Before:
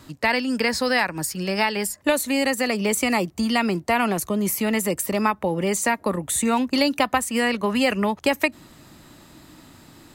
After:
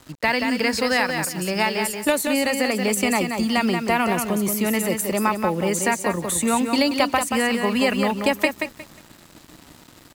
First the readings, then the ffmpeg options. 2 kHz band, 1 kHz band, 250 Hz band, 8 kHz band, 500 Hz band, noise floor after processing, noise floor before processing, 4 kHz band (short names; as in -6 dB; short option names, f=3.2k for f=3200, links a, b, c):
+1.0 dB, +1.0 dB, +1.0 dB, +1.0 dB, +1.0 dB, -49 dBFS, -51 dBFS, +1.0 dB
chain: -af "aecho=1:1:180|360|540:0.501|0.11|0.0243,acrusher=bits=6:mix=0:aa=0.5"